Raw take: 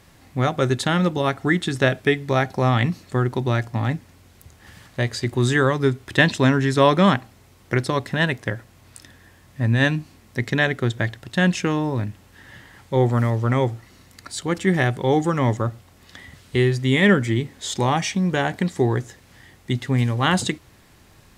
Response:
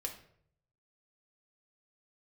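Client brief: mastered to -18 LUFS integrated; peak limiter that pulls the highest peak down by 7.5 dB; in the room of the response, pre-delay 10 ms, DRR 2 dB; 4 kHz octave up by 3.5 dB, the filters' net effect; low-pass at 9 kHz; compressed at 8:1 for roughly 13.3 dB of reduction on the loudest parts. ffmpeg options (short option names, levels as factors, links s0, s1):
-filter_complex "[0:a]lowpass=9000,equalizer=f=4000:t=o:g=4.5,acompressor=threshold=0.0562:ratio=8,alimiter=limit=0.112:level=0:latency=1,asplit=2[s0][s1];[1:a]atrim=start_sample=2205,adelay=10[s2];[s1][s2]afir=irnorm=-1:irlink=0,volume=0.841[s3];[s0][s3]amix=inputs=2:normalize=0,volume=3.76"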